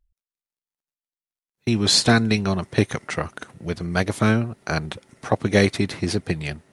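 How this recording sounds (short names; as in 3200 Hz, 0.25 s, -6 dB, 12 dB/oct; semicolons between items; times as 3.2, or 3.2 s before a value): noise floor -96 dBFS; spectral tilt -4.5 dB/oct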